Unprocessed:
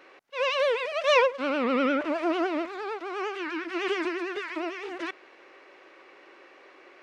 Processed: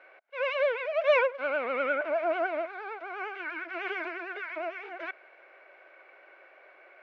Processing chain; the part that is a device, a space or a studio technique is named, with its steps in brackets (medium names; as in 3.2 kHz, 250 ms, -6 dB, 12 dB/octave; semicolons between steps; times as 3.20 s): tin-can telephone (band-pass 490–2700 Hz; small resonant body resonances 650/1500/2200 Hz, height 12 dB, ringing for 20 ms); trim -6.5 dB